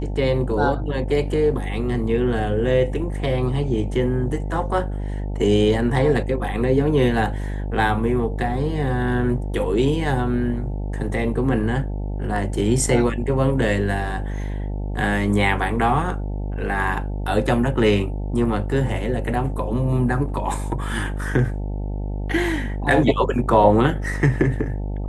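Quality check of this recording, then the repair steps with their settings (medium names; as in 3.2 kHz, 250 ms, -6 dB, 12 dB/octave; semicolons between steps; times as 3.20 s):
buzz 50 Hz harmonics 18 -26 dBFS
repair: de-hum 50 Hz, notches 18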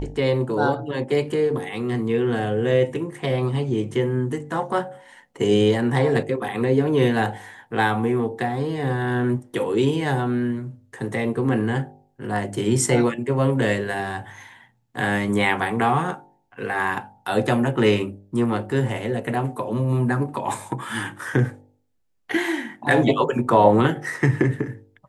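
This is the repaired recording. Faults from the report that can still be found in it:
nothing left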